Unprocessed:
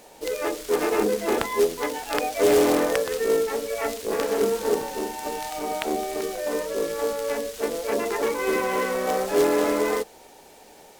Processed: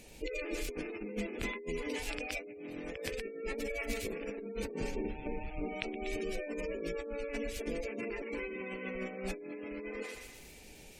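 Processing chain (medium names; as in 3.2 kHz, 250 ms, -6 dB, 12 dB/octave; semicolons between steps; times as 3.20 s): 4.91–5.69 s: median filter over 25 samples; thinning echo 121 ms, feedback 57%, high-pass 790 Hz, level -7.5 dB; compressor with a negative ratio -29 dBFS, ratio -1; peaking EQ 2.4 kHz +9.5 dB 0.48 oct; 3.57–4.16 s: modulation noise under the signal 14 dB; spectral gate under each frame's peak -25 dB strong; amplifier tone stack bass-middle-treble 10-0-1; trim +13 dB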